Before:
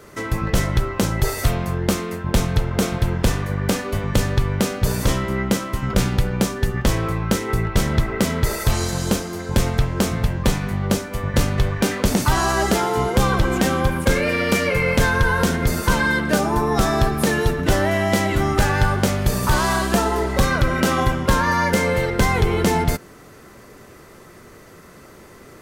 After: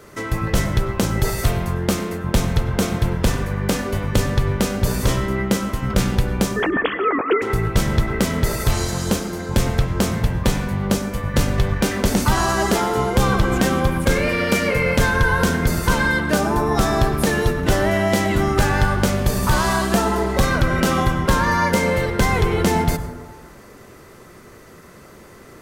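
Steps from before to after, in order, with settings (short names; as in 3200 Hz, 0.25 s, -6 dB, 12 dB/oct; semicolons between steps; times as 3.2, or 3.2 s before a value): 6.56–7.42 sine-wave speech; plate-style reverb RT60 1.3 s, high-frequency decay 0.25×, pre-delay 85 ms, DRR 10.5 dB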